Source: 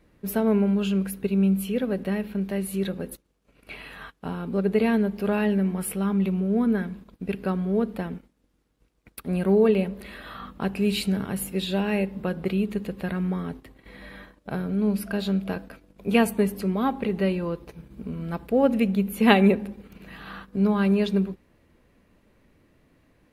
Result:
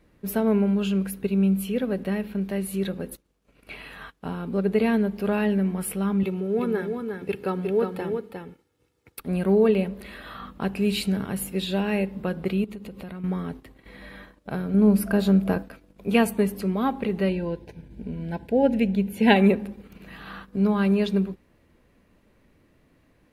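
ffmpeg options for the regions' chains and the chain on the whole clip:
-filter_complex "[0:a]asettb=1/sr,asplit=3[a][b][c];[a]atrim=end=6.234[d];[b]atrim=start=6.23:end=9.2,asetpts=PTS-STARTPTS,afade=t=in:d=0.004:c=qsin,afade=t=out:st=2.966:d=0.004:c=qsin,highpass=f=77:w=0.5412,highpass=f=77:w=1.3066,aecho=1:1:2.3:0.55,atrim=end_sample=130977,aecho=1:1:357:0.531,atrim=end_sample=130977[e];[c]atrim=start=9.196[f];[d][e]acrossfade=d=0.004:c1=hsin:c2=qsin[g];[g][f]acrossfade=d=0.004:c1=qsin:c2=hsin,asettb=1/sr,asplit=3[h][i][j];[h]atrim=end=12.644[k];[i]atrim=start=12.64:end=13.24,asetpts=PTS-STARTPTS,afade=t=in:d=0.004:c=qsin,afade=t=out:st=0.596:d=0.004:c=qsin,bandreject=f=1.7k:w=6.1,acompressor=threshold=-34dB:ratio=6:attack=3.2:release=140:knee=1:detection=peak[l];[j]atrim=start=13.236[m];[k][l]acrossfade=d=0.004:c1=hsin:c2=qsin[n];[n][m]acrossfade=d=0.004:c1=qsin:c2=hsin,asettb=1/sr,asplit=3[o][p][q];[o]atrim=end=14.744[r];[p]atrim=start=14.74:end=15.63,asetpts=PTS-STARTPTS,afade=t=in:d=0.004:c=qsin,afade=t=out:st=0.886:d=0.004:c=qsin,equalizer=f=3.4k:w=0.76:g=-8,acontrast=57[s];[q]atrim=start=15.626[t];[r][s]acrossfade=d=0.004:c1=hsin:c2=qsin[u];[u][t]acrossfade=d=0.004:c1=qsin:c2=hsin,asettb=1/sr,asplit=3[v][w][x];[v]atrim=end=17.294[y];[w]atrim=start=17.29:end=19.36,asetpts=PTS-STARTPTS,afade=t=in:d=0.004:c=qsin,afade=t=out:st=2.066:d=0.004:c=qsin,highshelf=f=10k:g=-11.5,aeval=exprs='val(0)+0.00398*(sin(2*PI*50*n/s)+sin(2*PI*2*50*n/s)/2+sin(2*PI*3*50*n/s)/3+sin(2*PI*4*50*n/s)/4+sin(2*PI*5*50*n/s)/5)':c=same,asuperstop=centerf=1200:order=12:qfactor=3.1[z];[x]atrim=start=19.356[aa];[y][z]acrossfade=d=0.004:c1=hsin:c2=qsin[ab];[ab][aa]acrossfade=d=0.004:c1=qsin:c2=hsin"

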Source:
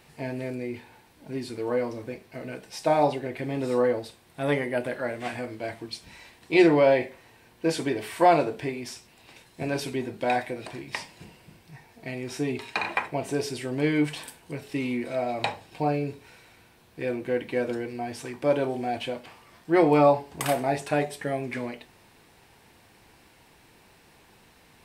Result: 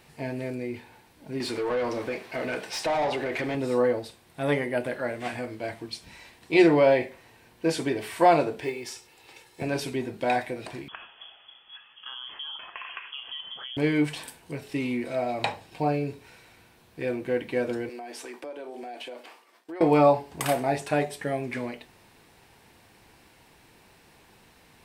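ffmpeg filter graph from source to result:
-filter_complex "[0:a]asettb=1/sr,asplit=3[a][b][c];[a]atrim=end=1.404[d];[b]atrim=start=1.4:end=3.55,asetpts=PTS-STARTPTS,afade=t=in:d=0.004:c=qsin,afade=t=out:st=2.146:d=0.004:c=qsin,acompressor=threshold=-32dB:ratio=2:attack=3.2:release=140:knee=1:detection=peak,asplit=2[e][f];[f]highpass=f=720:p=1,volume=20dB,asoftclip=type=tanh:threshold=-19dB[g];[e][g]amix=inputs=2:normalize=0,lowpass=f=3.6k:p=1,volume=-6dB[h];[c]atrim=start=3.546[i];[d][h]acrossfade=d=0.004:c1=hsin:c2=qsin[j];[j][i]acrossfade=d=0.004:c1=qsin:c2=hsin,asettb=1/sr,asplit=3[k][l][m];[k]atrim=end=8.624[n];[l]atrim=start=8.62:end=9.62,asetpts=PTS-STARTPTS,afade=t=in:d=0.004:c=qsin,afade=t=out:st=0.996:d=0.004:c=qsin,lowshelf=f=150:g=-11,aecho=1:1:2.3:0.53,atrim=end_sample=44100,acrusher=bits=8:mode=log:mix=0:aa=0.000001[o];[m]atrim=start=9.616[p];[n][o]acrossfade=d=0.004:c1=hsin:c2=qsin[q];[q][p]acrossfade=d=0.004:c1=qsin:c2=hsin,asettb=1/sr,asplit=3[r][s][t];[r]atrim=end=10.884[u];[s]atrim=start=10.88:end=13.77,asetpts=PTS-STARTPTS,afade=t=in:d=0.004:c=qsin,afade=t=out:st=2.886:d=0.004:c=qsin,acompressor=threshold=-35dB:ratio=5:attack=3.2:release=140:knee=1:detection=peak,lowpass=f=3k:t=q:w=0.5098,lowpass=f=3k:t=q:w=0.6013,lowpass=f=3k:t=q:w=0.9,lowpass=f=3k:t=q:w=2.563,afreqshift=-3500[v];[t]atrim=start=13.766[w];[u][v]acrossfade=d=0.004:c1=hsin:c2=qsin[x];[x][w]acrossfade=d=0.004:c1=qsin:c2=hsin,asettb=1/sr,asplit=3[y][z][aa];[y]atrim=end=17.894[ab];[z]atrim=start=17.89:end=19.81,asetpts=PTS-STARTPTS,afade=t=in:d=0.004:c=qsin,afade=t=out:st=1.916:d=0.004:c=qsin,highpass=f=290:w=0.5412,highpass=f=290:w=1.3066,acompressor=threshold=-35dB:ratio=10:attack=3.2:release=140:knee=1:detection=peak,agate=range=-33dB:threshold=-50dB:ratio=3:release=100:detection=peak[ac];[aa]atrim=start=19.806[ad];[ab][ac]acrossfade=d=0.004:c1=hsin:c2=qsin[ae];[ae][ad]acrossfade=d=0.004:c1=qsin:c2=hsin"

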